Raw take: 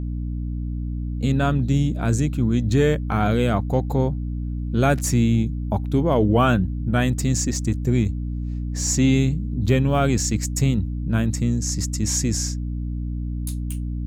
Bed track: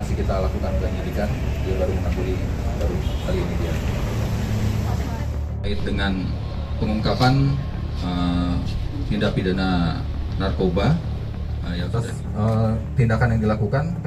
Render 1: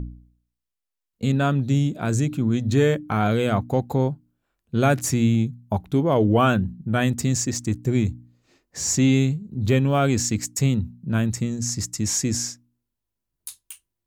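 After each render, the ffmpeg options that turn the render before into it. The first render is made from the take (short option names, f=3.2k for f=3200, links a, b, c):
-af "bandreject=f=60:t=h:w=4,bandreject=f=120:t=h:w=4,bandreject=f=180:t=h:w=4,bandreject=f=240:t=h:w=4,bandreject=f=300:t=h:w=4"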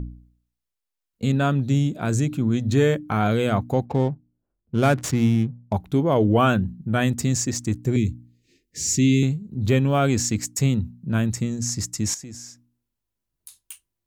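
-filter_complex "[0:a]asettb=1/sr,asplit=3[a][b][c];[a]atrim=end=3.854[d];[b]atrim=start=3.85:end=5.73,asetpts=PTS-STARTPTS,afade=t=in:d=0.004:c=qsin,afade=t=out:st=1.876:d=0.004:c=qsin,adynamicsmooth=sensitivity=7:basefreq=570[e];[c]atrim=start=5.726[f];[d][e]acrossfade=d=0.004:c1=hsin:c2=qsin[g];[g][f]acrossfade=d=0.004:c1=qsin:c2=hsin,asettb=1/sr,asplit=3[h][i][j];[h]atrim=end=7.964[k];[i]atrim=start=7.96:end=9.23,asetpts=PTS-STARTPTS,afade=t=in:d=0.004:c=qsin,afade=t=out:st=1.266:d=0.004:c=qsin,asuperstop=centerf=940:order=8:qfactor=0.62[l];[j]atrim=start=9.226[m];[k][l]acrossfade=d=0.004:c1=hsin:c2=qsin[n];[n][m]acrossfade=d=0.004:c1=qsin:c2=hsin,asettb=1/sr,asplit=3[o][p][q];[o]atrim=end=12.144[r];[p]atrim=start=12.14:end=13.62,asetpts=PTS-STARTPTS,afade=t=in:d=0.004:c=qsin,afade=t=out:st=1.476:d=0.004:c=qsin,acompressor=threshold=-42dB:ratio=2.5:attack=3.2:release=140:knee=1:detection=peak[s];[q]atrim=start=13.616[t];[r][s]acrossfade=d=0.004:c1=hsin:c2=qsin[u];[u][t]acrossfade=d=0.004:c1=qsin:c2=hsin"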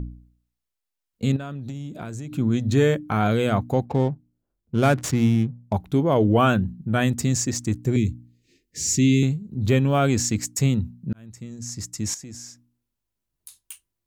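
-filter_complex "[0:a]asettb=1/sr,asplit=3[a][b][c];[a]atrim=end=1.364[d];[b]atrim=start=1.36:end=2.36,asetpts=PTS-STARTPTS,afade=t=in:d=0.004:c=qsin,afade=t=out:st=0.996:d=0.004:c=qsin,acompressor=threshold=-29dB:ratio=12:attack=3.2:release=140:knee=1:detection=peak[e];[c]atrim=start=2.356[f];[d][e]acrossfade=d=0.004:c1=hsin:c2=qsin[g];[g][f]acrossfade=d=0.004:c1=qsin:c2=hsin,asplit=2[h][i];[h]atrim=end=11.13,asetpts=PTS-STARTPTS,afade=t=out:st=11.126:d=0.004:c=hsin[j];[i]atrim=start=11.13,asetpts=PTS-STARTPTS,afade=t=in:d=1.28[k];[j][k]concat=n=2:v=0:a=1"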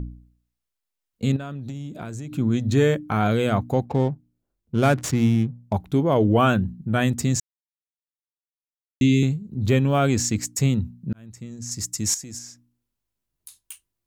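-filter_complex "[0:a]asettb=1/sr,asplit=3[a][b][c];[a]atrim=end=11.714[d];[b]atrim=start=11.71:end=12.39,asetpts=PTS-STARTPTS,afade=t=in:d=0.004:c=qsin,afade=t=out:st=0.676:d=0.004:c=qsin,highshelf=f=5k:g=9[e];[c]atrim=start=12.386[f];[d][e]acrossfade=d=0.004:c1=hsin:c2=qsin[g];[g][f]acrossfade=d=0.004:c1=qsin:c2=hsin,asplit=3[h][i][j];[h]atrim=end=7.4,asetpts=PTS-STARTPTS,afade=t=out:st=7.396:d=0.004:c=hsin[k];[i]atrim=start=7.4:end=9.01,asetpts=PTS-STARTPTS,volume=0[l];[j]atrim=start=9.01,asetpts=PTS-STARTPTS,afade=t=in:d=0.004:c=hsin[m];[k][l][m]concat=n=3:v=0:a=1"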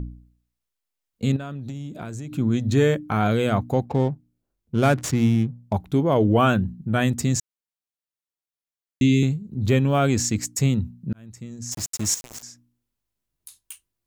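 -filter_complex "[0:a]asettb=1/sr,asplit=3[a][b][c];[a]atrim=end=11.724[d];[b]atrim=start=11.72:end=12.43,asetpts=PTS-STARTPTS,afade=t=in:d=0.004:c=qsin,afade=t=out:st=0.706:d=0.004:c=qsin,aeval=exprs='val(0)*gte(abs(val(0)),0.0266)':c=same[e];[c]atrim=start=12.426[f];[d][e]acrossfade=d=0.004:c1=hsin:c2=qsin[g];[g][f]acrossfade=d=0.004:c1=qsin:c2=hsin"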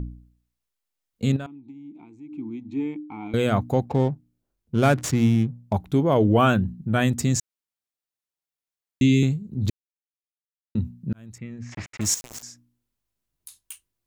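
-filter_complex "[0:a]asettb=1/sr,asplit=3[a][b][c];[a]atrim=end=1.464[d];[b]atrim=start=1.46:end=3.34,asetpts=PTS-STARTPTS,afade=t=in:d=0.004:c=qsin,afade=t=out:st=1.876:d=0.004:c=qsin,asplit=3[e][f][g];[e]bandpass=f=300:t=q:w=8,volume=0dB[h];[f]bandpass=f=870:t=q:w=8,volume=-6dB[i];[g]bandpass=f=2.24k:t=q:w=8,volume=-9dB[j];[h][i][j]amix=inputs=3:normalize=0[k];[c]atrim=start=3.336[l];[d][k]acrossfade=d=0.004:c1=hsin:c2=qsin[m];[m][l]acrossfade=d=0.004:c1=qsin:c2=hsin,asettb=1/sr,asplit=3[n][o][p];[n]atrim=end=11.384[q];[o]atrim=start=11.38:end=12.01,asetpts=PTS-STARTPTS,afade=t=in:d=0.004:c=qsin,afade=t=out:st=0.626:d=0.004:c=qsin,lowpass=f=2.2k:t=q:w=3[r];[p]atrim=start=12.006[s];[q][r]acrossfade=d=0.004:c1=hsin:c2=qsin[t];[t][s]acrossfade=d=0.004:c1=qsin:c2=hsin,asplit=3[u][v][w];[u]atrim=end=9.7,asetpts=PTS-STARTPTS,afade=t=out:st=9.696:d=0.004:c=hsin[x];[v]atrim=start=9.7:end=10.75,asetpts=PTS-STARTPTS,volume=0[y];[w]atrim=start=10.75,asetpts=PTS-STARTPTS,afade=t=in:d=0.004:c=hsin[z];[x][y][z]concat=n=3:v=0:a=1"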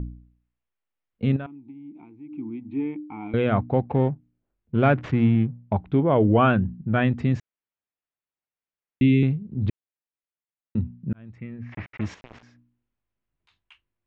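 -af "lowpass=f=2.8k:w=0.5412,lowpass=f=2.8k:w=1.3066"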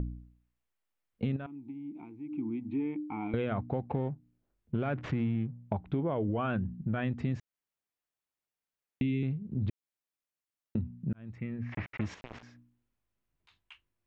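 -af "alimiter=limit=-13dB:level=0:latency=1,acompressor=threshold=-31dB:ratio=3"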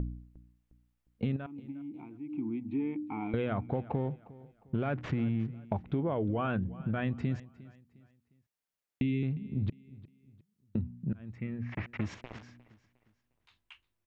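-af "aecho=1:1:356|712|1068:0.106|0.0381|0.0137"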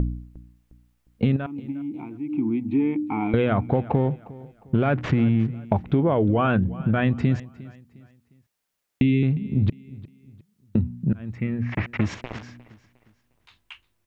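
-af "volume=11dB"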